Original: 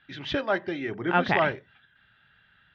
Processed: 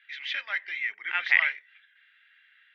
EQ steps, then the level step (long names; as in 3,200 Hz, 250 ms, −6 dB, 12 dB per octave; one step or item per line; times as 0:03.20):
high-pass with resonance 2,100 Hz, resonance Q 6
−4.0 dB